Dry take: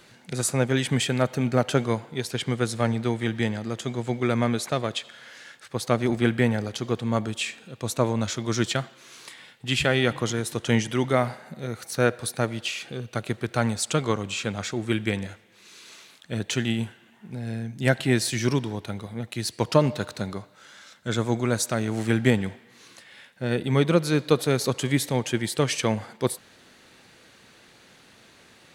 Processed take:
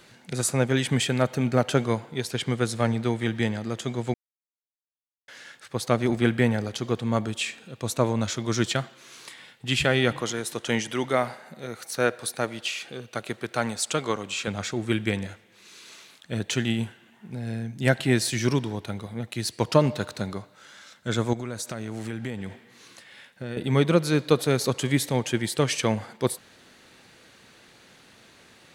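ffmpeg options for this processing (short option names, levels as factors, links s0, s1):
-filter_complex "[0:a]asettb=1/sr,asplit=3[s0][s1][s2];[s0]atrim=end=10.214[s3];[s1]atrim=start=10.21:end=14.48,asetpts=PTS-STARTPTS,afade=t=in:d=0.004:c=qsin,afade=t=out:st=4.266:d=0.004:c=qsin,highpass=f=320:p=1[s4];[s2]atrim=start=14.476[s5];[s3][s4]acrossfade=d=0.004:c1=hsin:c2=qsin[s6];[s6][s5]acrossfade=d=0.004:c1=qsin:c2=hsin,asettb=1/sr,asplit=3[s7][s8][s9];[s7]atrim=end=21.334[s10];[s8]atrim=start=21.33:end=23.57,asetpts=PTS-STARTPTS,afade=t=in:d=0.004:c=qsin,afade=t=out:st=2.236:d=0.004:c=qsin,acompressor=threshold=0.0316:ratio=4:attack=3.2:release=140:knee=1:detection=peak[s11];[s9]atrim=start=23.566[s12];[s10][s11]acrossfade=d=0.004:c1=hsin:c2=qsin[s13];[s13][s12]acrossfade=d=0.004:c1=qsin:c2=hsin,asplit=3[s14][s15][s16];[s14]atrim=end=4.14,asetpts=PTS-STARTPTS,afade=t=out:st=4.136:d=0.004:c=hsin[s17];[s15]atrim=start=4.14:end=5.28,asetpts=PTS-STARTPTS,volume=0[s18];[s16]atrim=start=5.28,asetpts=PTS-STARTPTS,afade=t=in:d=0.004:c=hsin[s19];[s17][s18][s19]concat=n=3:v=0:a=1"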